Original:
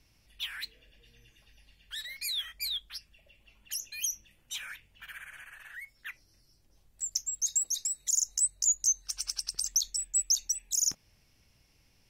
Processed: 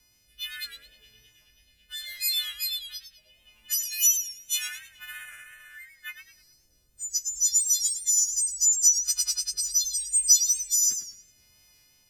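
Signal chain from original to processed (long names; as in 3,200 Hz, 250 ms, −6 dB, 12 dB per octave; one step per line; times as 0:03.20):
every partial snapped to a pitch grid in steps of 3 semitones
0:07.31–0:07.86: low-shelf EQ 160 Hz +11.5 dB
rotating-speaker cabinet horn 0.75 Hz
0:03.85–0:04.68: high-shelf EQ 2,500 Hz +9 dB
feedback echo with a swinging delay time 105 ms, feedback 33%, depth 114 cents, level −9 dB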